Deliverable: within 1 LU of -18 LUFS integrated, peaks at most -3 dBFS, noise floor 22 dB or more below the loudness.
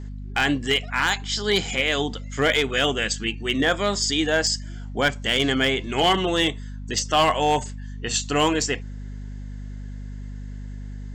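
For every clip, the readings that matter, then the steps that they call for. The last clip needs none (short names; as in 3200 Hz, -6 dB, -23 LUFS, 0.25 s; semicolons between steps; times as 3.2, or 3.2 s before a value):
clipped 0.4%; flat tops at -12.5 dBFS; hum 50 Hz; harmonics up to 250 Hz; hum level -32 dBFS; loudness -22.5 LUFS; peak -12.5 dBFS; loudness target -18.0 LUFS
-> clip repair -12.5 dBFS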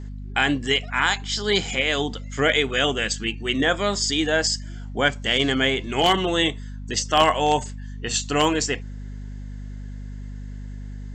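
clipped 0.0%; hum 50 Hz; harmonics up to 250 Hz; hum level -32 dBFS
-> de-hum 50 Hz, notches 5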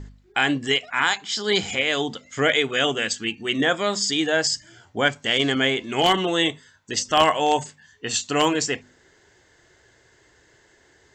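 hum none; loudness -22.0 LUFS; peak -3.0 dBFS; loudness target -18.0 LUFS
-> gain +4 dB; limiter -3 dBFS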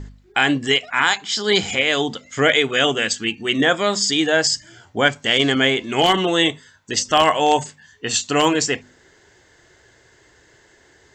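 loudness -18.5 LUFS; peak -3.0 dBFS; noise floor -54 dBFS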